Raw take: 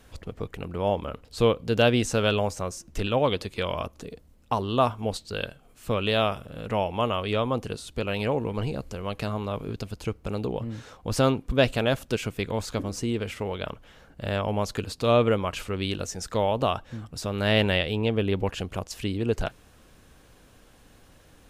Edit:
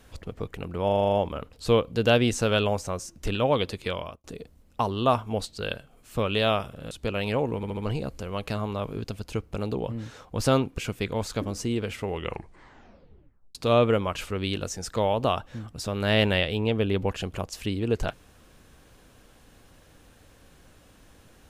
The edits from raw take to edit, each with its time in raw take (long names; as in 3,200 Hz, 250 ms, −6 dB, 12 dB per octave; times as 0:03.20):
0:00.85: stutter 0.04 s, 8 plays
0:03.57–0:03.96: fade out
0:06.63–0:07.84: remove
0:08.49: stutter 0.07 s, 4 plays
0:11.50–0:12.16: remove
0:13.40: tape stop 1.53 s